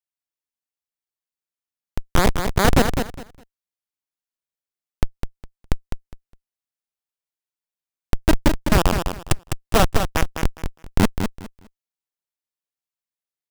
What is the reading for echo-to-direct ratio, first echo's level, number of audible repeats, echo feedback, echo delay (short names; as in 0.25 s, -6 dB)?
-7.0 dB, -7.0 dB, 3, 21%, 0.205 s